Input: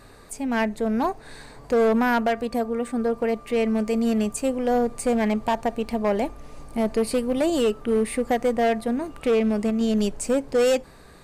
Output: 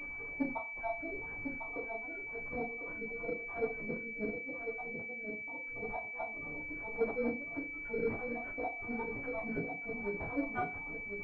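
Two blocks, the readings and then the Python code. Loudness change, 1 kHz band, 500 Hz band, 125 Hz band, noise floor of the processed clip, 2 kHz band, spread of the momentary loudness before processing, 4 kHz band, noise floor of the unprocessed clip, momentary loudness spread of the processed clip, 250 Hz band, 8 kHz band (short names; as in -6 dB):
-15.0 dB, -15.5 dB, -17.0 dB, -13.5 dB, -44 dBFS, -4.5 dB, 6 LU, under -35 dB, -48 dBFS, 4 LU, -18.5 dB, under -40 dB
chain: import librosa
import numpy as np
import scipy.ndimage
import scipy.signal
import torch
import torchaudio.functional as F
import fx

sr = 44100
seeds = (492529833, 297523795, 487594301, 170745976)

y = fx.spec_dropout(x, sr, seeds[0], share_pct=62)
y = scipy.signal.sosfilt(scipy.signal.butter(4, 140.0, 'highpass', fs=sr, output='sos'), y)
y = fx.auto_swell(y, sr, attack_ms=142.0)
y = fx.dmg_noise_colour(y, sr, seeds[1], colour='brown', level_db=-56.0)
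y = fx.gate_flip(y, sr, shuts_db=-23.0, range_db=-29)
y = fx.chorus_voices(y, sr, voices=4, hz=0.27, base_ms=14, depth_ms=3.8, mix_pct=55)
y = y + 10.0 ** (-7.0 / 20.0) * np.pad(y, (int(1050 * sr / 1000.0), 0))[:len(y)]
y = fx.rev_fdn(y, sr, rt60_s=0.35, lf_ratio=1.0, hf_ratio=0.7, size_ms=20.0, drr_db=-2.5)
y = fx.pwm(y, sr, carrier_hz=2300.0)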